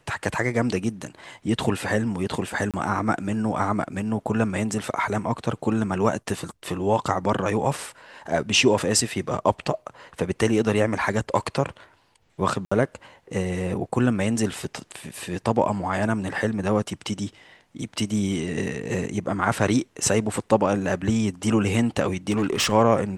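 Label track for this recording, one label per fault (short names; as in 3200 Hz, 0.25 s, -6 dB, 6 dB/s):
2.710000	2.740000	gap 27 ms
12.650000	12.710000	gap 65 ms
22.300000	22.720000	clipped -18 dBFS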